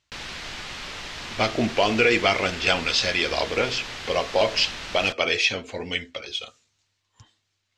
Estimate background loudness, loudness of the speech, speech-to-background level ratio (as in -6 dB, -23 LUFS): -34.0 LUFS, -23.0 LUFS, 11.0 dB